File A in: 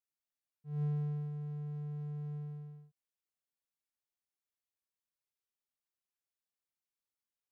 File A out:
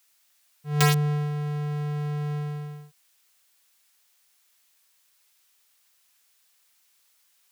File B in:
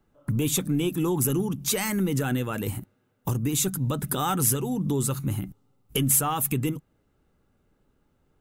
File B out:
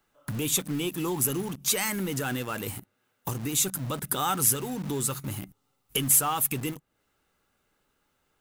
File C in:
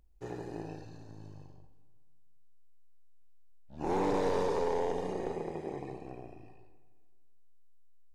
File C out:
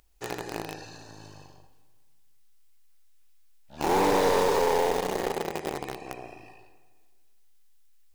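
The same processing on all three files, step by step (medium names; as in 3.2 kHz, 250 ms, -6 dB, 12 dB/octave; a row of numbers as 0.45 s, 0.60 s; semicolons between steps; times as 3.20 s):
bass shelf 450 Hz -9 dB; in parallel at -4 dB: word length cut 6-bit, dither none; on the sum: tape noise reduction on one side only encoder only; normalise loudness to -27 LUFS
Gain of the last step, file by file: +19.0 dB, -3.0 dB, +7.0 dB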